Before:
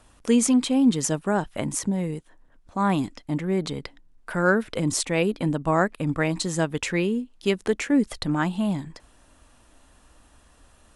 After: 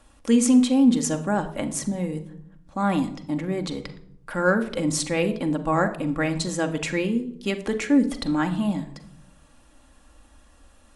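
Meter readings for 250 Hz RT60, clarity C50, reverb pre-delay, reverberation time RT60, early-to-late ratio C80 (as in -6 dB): 1.1 s, 13.5 dB, 4 ms, 0.70 s, 16.5 dB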